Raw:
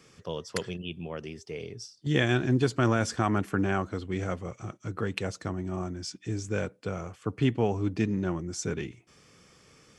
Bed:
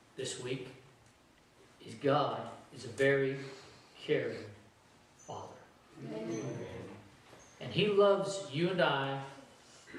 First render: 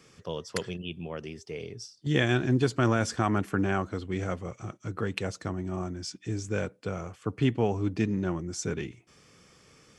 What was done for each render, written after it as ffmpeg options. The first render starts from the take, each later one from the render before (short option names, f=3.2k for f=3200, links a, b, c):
-af anull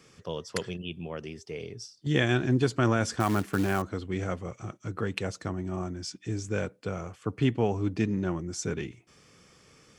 -filter_complex "[0:a]asettb=1/sr,asplit=3[a][b][c];[a]atrim=end=3.204[d];[b]atrim=start=3.2:end=3.82,asetpts=PTS-STARTPTS,afade=t=in:d=0.004:c=qsin,afade=t=out:st=0.616:d=0.004:c=qsin,acrusher=bits=4:mode=log:mix=0:aa=0.000001[e];[c]atrim=start=3.816[f];[d][e]acrossfade=d=0.004:c1=hsin:c2=qsin[g];[g][f]acrossfade=d=0.004:c1=qsin:c2=hsin"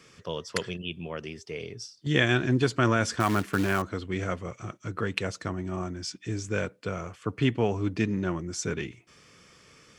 -af "equalizer=f=2.2k:t=o:w=2.8:g=4.5,bandreject=f=790:w=12"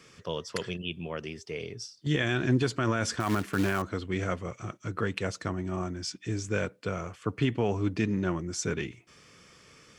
-af "alimiter=limit=-16dB:level=0:latency=1:release=46"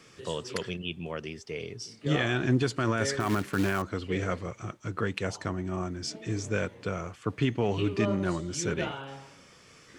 -filter_complex "[1:a]volume=-6dB[a];[0:a][a]amix=inputs=2:normalize=0"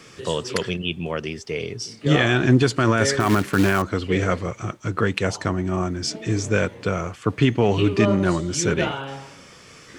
-af "volume=9dB"